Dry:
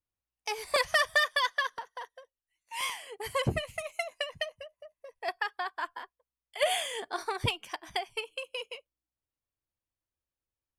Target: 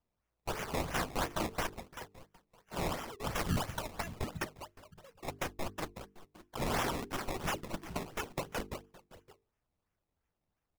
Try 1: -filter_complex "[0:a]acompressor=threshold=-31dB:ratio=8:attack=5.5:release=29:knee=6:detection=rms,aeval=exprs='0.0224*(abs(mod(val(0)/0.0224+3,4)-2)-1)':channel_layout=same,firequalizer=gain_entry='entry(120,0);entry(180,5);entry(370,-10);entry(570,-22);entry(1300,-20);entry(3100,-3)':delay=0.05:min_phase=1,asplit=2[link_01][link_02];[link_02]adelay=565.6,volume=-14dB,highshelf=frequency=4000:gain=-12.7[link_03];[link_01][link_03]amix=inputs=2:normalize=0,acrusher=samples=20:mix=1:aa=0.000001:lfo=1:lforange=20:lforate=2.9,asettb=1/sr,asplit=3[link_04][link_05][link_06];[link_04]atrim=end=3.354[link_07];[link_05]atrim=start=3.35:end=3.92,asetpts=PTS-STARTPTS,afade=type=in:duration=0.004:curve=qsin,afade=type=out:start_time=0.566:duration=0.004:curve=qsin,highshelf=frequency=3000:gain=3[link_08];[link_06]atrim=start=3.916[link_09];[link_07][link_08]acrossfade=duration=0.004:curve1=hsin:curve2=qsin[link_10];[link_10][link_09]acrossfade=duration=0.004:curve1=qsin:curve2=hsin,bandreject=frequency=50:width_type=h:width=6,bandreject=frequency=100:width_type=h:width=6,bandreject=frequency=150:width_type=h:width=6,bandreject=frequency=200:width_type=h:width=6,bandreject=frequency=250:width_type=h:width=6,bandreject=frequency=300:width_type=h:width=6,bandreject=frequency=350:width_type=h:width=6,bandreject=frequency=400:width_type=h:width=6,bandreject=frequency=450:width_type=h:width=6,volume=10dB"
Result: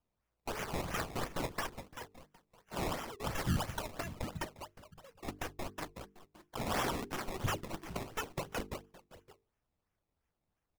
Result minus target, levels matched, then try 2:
downward compressor: peak gain reduction +11 dB
-filter_complex "[0:a]aeval=exprs='0.0224*(abs(mod(val(0)/0.0224+3,4)-2)-1)':channel_layout=same,firequalizer=gain_entry='entry(120,0);entry(180,5);entry(370,-10);entry(570,-22);entry(1300,-20);entry(3100,-3)':delay=0.05:min_phase=1,asplit=2[link_01][link_02];[link_02]adelay=565.6,volume=-14dB,highshelf=frequency=4000:gain=-12.7[link_03];[link_01][link_03]amix=inputs=2:normalize=0,acrusher=samples=20:mix=1:aa=0.000001:lfo=1:lforange=20:lforate=2.9,asettb=1/sr,asplit=3[link_04][link_05][link_06];[link_04]atrim=end=3.354[link_07];[link_05]atrim=start=3.35:end=3.92,asetpts=PTS-STARTPTS,afade=type=in:duration=0.004:curve=qsin,afade=type=out:start_time=0.566:duration=0.004:curve=qsin,highshelf=frequency=3000:gain=3[link_08];[link_06]atrim=start=3.916[link_09];[link_07][link_08]acrossfade=duration=0.004:curve1=hsin:curve2=qsin[link_10];[link_10][link_09]acrossfade=duration=0.004:curve1=qsin:curve2=hsin,bandreject=frequency=50:width_type=h:width=6,bandreject=frequency=100:width_type=h:width=6,bandreject=frequency=150:width_type=h:width=6,bandreject=frequency=200:width_type=h:width=6,bandreject=frequency=250:width_type=h:width=6,bandreject=frequency=300:width_type=h:width=6,bandreject=frequency=350:width_type=h:width=6,bandreject=frequency=400:width_type=h:width=6,bandreject=frequency=450:width_type=h:width=6,volume=10dB"

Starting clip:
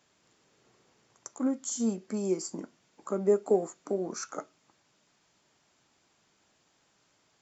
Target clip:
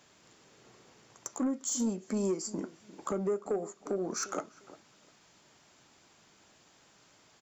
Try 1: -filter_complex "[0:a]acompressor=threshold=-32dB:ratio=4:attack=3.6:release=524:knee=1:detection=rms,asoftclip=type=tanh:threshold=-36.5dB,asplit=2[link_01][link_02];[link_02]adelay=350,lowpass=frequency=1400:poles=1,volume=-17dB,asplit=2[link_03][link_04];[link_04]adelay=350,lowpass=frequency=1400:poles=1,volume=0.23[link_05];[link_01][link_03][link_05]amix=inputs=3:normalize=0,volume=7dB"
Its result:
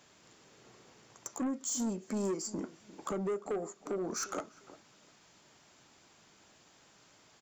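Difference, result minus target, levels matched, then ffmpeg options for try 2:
soft clipping: distortion +7 dB
-filter_complex "[0:a]acompressor=threshold=-32dB:ratio=4:attack=3.6:release=524:knee=1:detection=rms,asoftclip=type=tanh:threshold=-30.5dB,asplit=2[link_01][link_02];[link_02]adelay=350,lowpass=frequency=1400:poles=1,volume=-17dB,asplit=2[link_03][link_04];[link_04]adelay=350,lowpass=frequency=1400:poles=1,volume=0.23[link_05];[link_01][link_03][link_05]amix=inputs=3:normalize=0,volume=7dB"

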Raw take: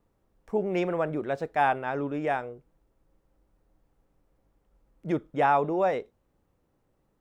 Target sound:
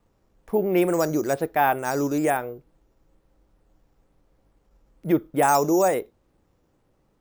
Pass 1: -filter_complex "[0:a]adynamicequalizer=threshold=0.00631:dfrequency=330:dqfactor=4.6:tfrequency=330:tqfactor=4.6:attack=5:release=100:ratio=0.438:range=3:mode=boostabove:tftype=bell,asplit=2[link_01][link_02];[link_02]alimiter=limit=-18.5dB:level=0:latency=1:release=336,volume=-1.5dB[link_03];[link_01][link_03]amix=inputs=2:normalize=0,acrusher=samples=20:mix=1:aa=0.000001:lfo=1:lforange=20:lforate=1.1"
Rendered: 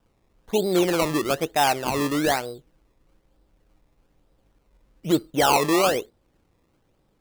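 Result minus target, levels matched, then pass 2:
sample-and-hold swept by an LFO: distortion +14 dB
-filter_complex "[0:a]adynamicequalizer=threshold=0.00631:dfrequency=330:dqfactor=4.6:tfrequency=330:tqfactor=4.6:attack=5:release=100:ratio=0.438:range=3:mode=boostabove:tftype=bell,asplit=2[link_01][link_02];[link_02]alimiter=limit=-18.5dB:level=0:latency=1:release=336,volume=-1.5dB[link_03];[link_01][link_03]amix=inputs=2:normalize=0,acrusher=samples=5:mix=1:aa=0.000001:lfo=1:lforange=5:lforate=1.1"

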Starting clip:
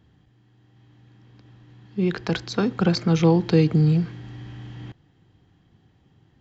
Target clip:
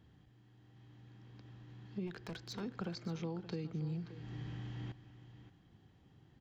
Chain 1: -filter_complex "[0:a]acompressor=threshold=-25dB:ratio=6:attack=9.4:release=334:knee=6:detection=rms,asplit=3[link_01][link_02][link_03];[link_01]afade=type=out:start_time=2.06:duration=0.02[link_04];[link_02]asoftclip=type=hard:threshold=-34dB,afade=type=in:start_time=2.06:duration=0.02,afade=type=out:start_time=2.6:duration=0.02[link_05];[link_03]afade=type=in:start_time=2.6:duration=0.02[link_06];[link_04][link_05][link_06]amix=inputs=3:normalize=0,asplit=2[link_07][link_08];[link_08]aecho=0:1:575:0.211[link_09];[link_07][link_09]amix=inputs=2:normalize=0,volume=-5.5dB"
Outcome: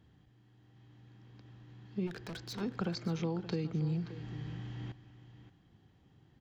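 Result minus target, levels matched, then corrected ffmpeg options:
downward compressor: peak gain reduction −6 dB
-filter_complex "[0:a]acompressor=threshold=-32dB:ratio=6:attack=9.4:release=334:knee=6:detection=rms,asplit=3[link_01][link_02][link_03];[link_01]afade=type=out:start_time=2.06:duration=0.02[link_04];[link_02]asoftclip=type=hard:threshold=-34dB,afade=type=in:start_time=2.06:duration=0.02,afade=type=out:start_time=2.6:duration=0.02[link_05];[link_03]afade=type=in:start_time=2.6:duration=0.02[link_06];[link_04][link_05][link_06]amix=inputs=3:normalize=0,asplit=2[link_07][link_08];[link_08]aecho=0:1:575:0.211[link_09];[link_07][link_09]amix=inputs=2:normalize=0,volume=-5.5dB"

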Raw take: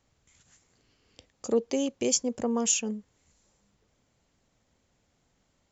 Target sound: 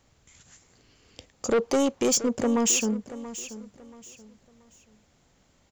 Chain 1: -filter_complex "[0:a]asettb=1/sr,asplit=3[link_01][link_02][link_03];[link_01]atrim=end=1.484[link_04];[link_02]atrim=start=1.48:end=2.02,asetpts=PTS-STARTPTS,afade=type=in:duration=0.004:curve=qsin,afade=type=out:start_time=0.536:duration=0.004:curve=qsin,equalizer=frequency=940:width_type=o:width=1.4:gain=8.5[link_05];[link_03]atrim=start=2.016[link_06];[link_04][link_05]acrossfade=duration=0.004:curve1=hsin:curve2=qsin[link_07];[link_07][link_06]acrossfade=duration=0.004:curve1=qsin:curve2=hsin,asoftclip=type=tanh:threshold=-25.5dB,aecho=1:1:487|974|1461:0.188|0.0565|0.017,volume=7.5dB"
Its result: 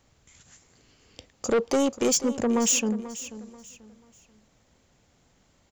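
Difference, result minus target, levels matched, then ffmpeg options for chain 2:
echo 194 ms early
-filter_complex "[0:a]asettb=1/sr,asplit=3[link_01][link_02][link_03];[link_01]atrim=end=1.484[link_04];[link_02]atrim=start=1.48:end=2.02,asetpts=PTS-STARTPTS,afade=type=in:duration=0.004:curve=qsin,afade=type=out:start_time=0.536:duration=0.004:curve=qsin,equalizer=frequency=940:width_type=o:width=1.4:gain=8.5[link_05];[link_03]atrim=start=2.016[link_06];[link_04][link_05]acrossfade=duration=0.004:curve1=hsin:curve2=qsin[link_07];[link_07][link_06]acrossfade=duration=0.004:curve1=qsin:curve2=hsin,asoftclip=type=tanh:threshold=-25.5dB,aecho=1:1:681|1362|2043:0.188|0.0565|0.017,volume=7.5dB"

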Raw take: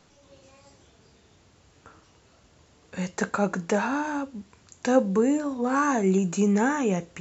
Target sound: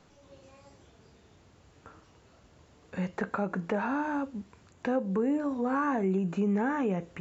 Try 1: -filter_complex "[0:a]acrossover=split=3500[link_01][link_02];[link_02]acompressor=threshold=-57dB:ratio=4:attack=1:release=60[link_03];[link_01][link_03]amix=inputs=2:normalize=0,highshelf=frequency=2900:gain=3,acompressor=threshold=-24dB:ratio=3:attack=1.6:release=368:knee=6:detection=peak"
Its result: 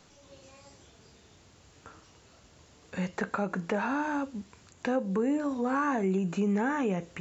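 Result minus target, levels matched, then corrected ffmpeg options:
8,000 Hz band +8.0 dB
-filter_complex "[0:a]acrossover=split=3500[link_01][link_02];[link_02]acompressor=threshold=-57dB:ratio=4:attack=1:release=60[link_03];[link_01][link_03]amix=inputs=2:normalize=0,highshelf=frequency=2900:gain=-7,acompressor=threshold=-24dB:ratio=3:attack=1.6:release=368:knee=6:detection=peak"

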